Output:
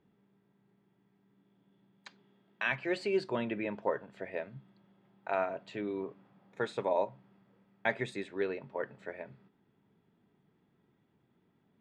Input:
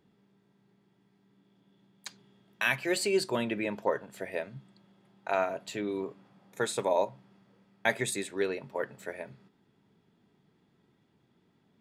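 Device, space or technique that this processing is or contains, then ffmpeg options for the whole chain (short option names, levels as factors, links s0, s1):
phone in a pocket: -filter_complex "[0:a]asettb=1/sr,asplit=3[s0][s1][s2];[s0]atrim=end=2.074[s3];[s1]atrim=start=2.07:end=2.72,asetpts=PTS-STARTPTS,afade=t=in:d=0.004:c=qsin,afade=t=out:st=0.646:d=0.004:c=qsin,highpass=170[s4];[s2]atrim=start=2.716[s5];[s3][s4]acrossfade=d=0.004:c1=hsin:c2=qsin[s6];[s6][s5]acrossfade=d=0.004:c1=qsin:c2=hsin,lowpass=3000,highshelf=f=2300:g=-11.5,highshelf=f=2300:g=10.5,volume=0.708"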